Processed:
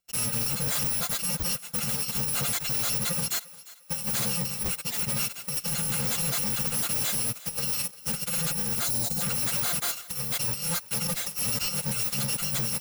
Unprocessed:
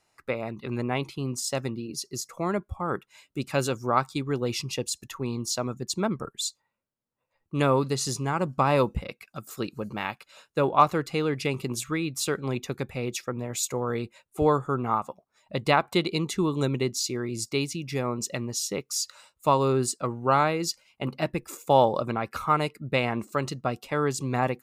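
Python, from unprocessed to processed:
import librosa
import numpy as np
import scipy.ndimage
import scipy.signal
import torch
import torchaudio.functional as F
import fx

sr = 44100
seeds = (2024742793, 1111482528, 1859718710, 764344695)

p1 = fx.bit_reversed(x, sr, seeds[0], block=128)
p2 = fx.stretch_vocoder_free(p1, sr, factor=0.52)
p3 = p2 + 0.59 * np.pad(p2, (int(5.7 * sr / 1000.0), 0))[:len(p2)]
p4 = fx.over_compress(p3, sr, threshold_db=-32.0, ratio=-0.5)
p5 = fx.leveller(p4, sr, passes=5)
p6 = fx.spec_erase(p5, sr, start_s=8.87, length_s=0.34, low_hz=980.0, high_hz=3600.0)
p7 = 10.0 ** (-20.5 / 20.0) * np.tanh(p6 / 10.0 ** (-20.5 / 20.0))
p8 = p7 + fx.echo_thinned(p7, sr, ms=350, feedback_pct=36, hz=510.0, wet_db=-18.5, dry=0)
y = F.gain(torch.from_numpy(p8), -4.5).numpy()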